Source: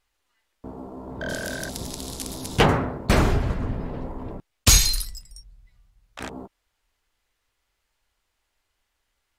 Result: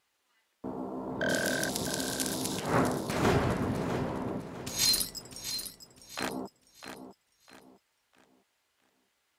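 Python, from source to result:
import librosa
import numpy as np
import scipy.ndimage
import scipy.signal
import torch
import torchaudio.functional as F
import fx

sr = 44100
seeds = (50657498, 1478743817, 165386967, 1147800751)

y = scipy.signal.sosfilt(scipy.signal.butter(2, 150.0, 'highpass', fs=sr, output='sos'), x)
y = fx.over_compress(y, sr, threshold_db=-24.0, ratio=-0.5)
y = fx.echo_feedback(y, sr, ms=653, feedback_pct=33, wet_db=-10.0)
y = y * 10.0 ** (-2.0 / 20.0)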